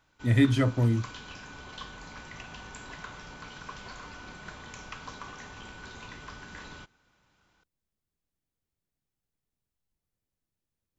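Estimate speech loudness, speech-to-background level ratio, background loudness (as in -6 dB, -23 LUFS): -25.0 LUFS, 19.0 dB, -44.0 LUFS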